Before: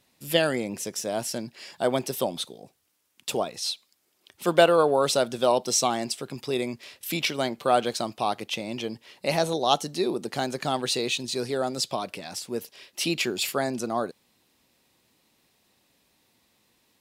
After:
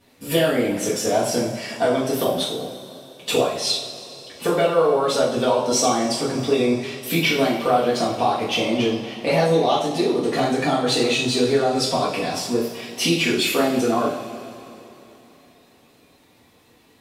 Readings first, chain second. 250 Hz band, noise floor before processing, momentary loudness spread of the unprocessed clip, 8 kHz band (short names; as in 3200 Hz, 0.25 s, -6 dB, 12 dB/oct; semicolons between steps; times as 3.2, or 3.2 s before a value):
+9.0 dB, -70 dBFS, 12 LU, +3.5 dB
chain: bin magnitudes rounded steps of 15 dB; high shelf 3300 Hz -9.5 dB; compressor 6:1, threshold -30 dBFS, peak gain reduction 16 dB; two-slope reverb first 0.5 s, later 3.3 s, from -17 dB, DRR -7.5 dB; gain +7 dB